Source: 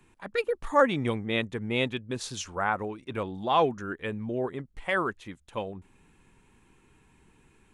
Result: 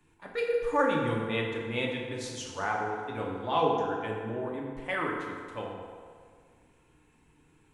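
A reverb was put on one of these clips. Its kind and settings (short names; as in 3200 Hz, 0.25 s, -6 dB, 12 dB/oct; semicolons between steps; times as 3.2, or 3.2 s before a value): FDN reverb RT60 2 s, low-frequency decay 0.7×, high-frequency decay 0.6×, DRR -2.5 dB; gain -6.5 dB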